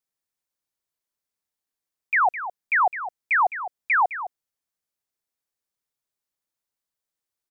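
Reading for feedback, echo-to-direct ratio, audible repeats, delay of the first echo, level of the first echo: no regular repeats, -12.0 dB, 1, 210 ms, -12.0 dB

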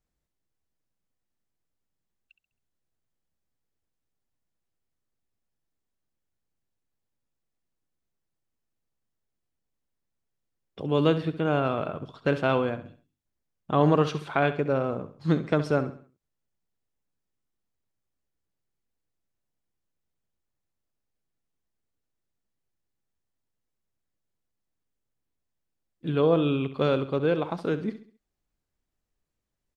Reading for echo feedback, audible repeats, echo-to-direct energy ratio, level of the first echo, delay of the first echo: 39%, 3, -12.5 dB, -13.0 dB, 67 ms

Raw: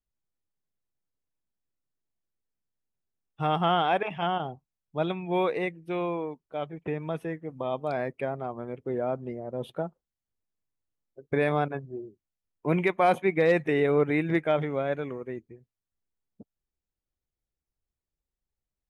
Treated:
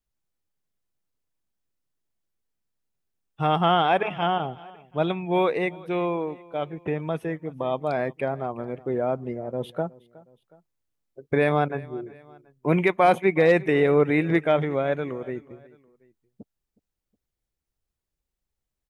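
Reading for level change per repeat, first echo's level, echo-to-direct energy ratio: -6.0 dB, -22.0 dB, -21.0 dB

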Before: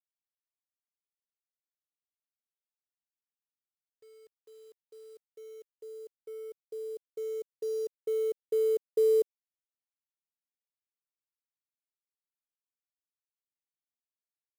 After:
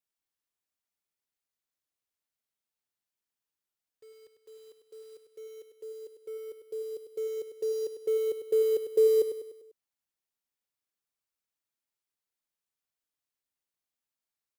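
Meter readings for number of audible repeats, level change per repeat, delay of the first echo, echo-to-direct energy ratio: 5, -6.5 dB, 99 ms, -8.0 dB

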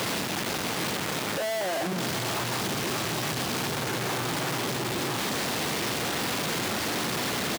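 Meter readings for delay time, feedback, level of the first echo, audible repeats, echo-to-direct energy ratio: 770 ms, 23%, -15.0 dB, 1, -15.0 dB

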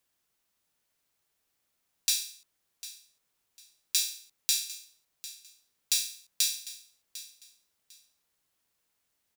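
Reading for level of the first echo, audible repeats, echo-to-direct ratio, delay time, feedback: -16.0 dB, 2, -16.0 dB, 750 ms, 23%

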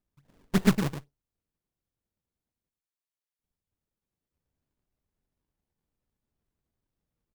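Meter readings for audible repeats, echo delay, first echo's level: 1, 109 ms, -8.5 dB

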